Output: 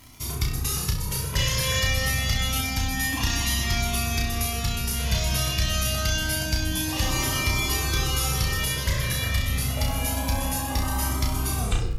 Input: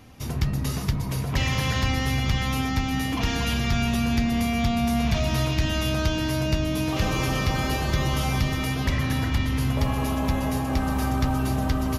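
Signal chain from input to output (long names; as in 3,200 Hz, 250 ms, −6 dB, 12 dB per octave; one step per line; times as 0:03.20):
turntable brake at the end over 0.40 s
parametric band 11,000 Hz +14 dB 2.3 octaves
surface crackle 43 per second −30 dBFS
on a send: flutter between parallel walls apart 5.6 metres, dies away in 0.43 s
on the sum: flanger whose copies keep moving one way rising 0.27 Hz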